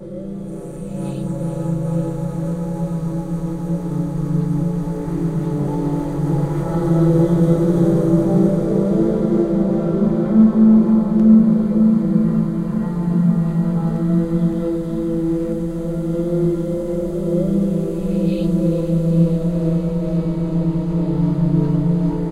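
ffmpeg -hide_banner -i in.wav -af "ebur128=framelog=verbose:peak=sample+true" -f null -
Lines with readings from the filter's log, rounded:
Integrated loudness:
  I:         -18.1 LUFS
  Threshold: -28.2 LUFS
Loudness range:
  LRA:         7.9 LU
  Threshold: -37.9 LUFS
  LRA low:   -22.3 LUFS
  LRA high:  -14.5 LUFS
Sample peak:
  Peak:       -2.4 dBFS
True peak:
  Peak:       -2.4 dBFS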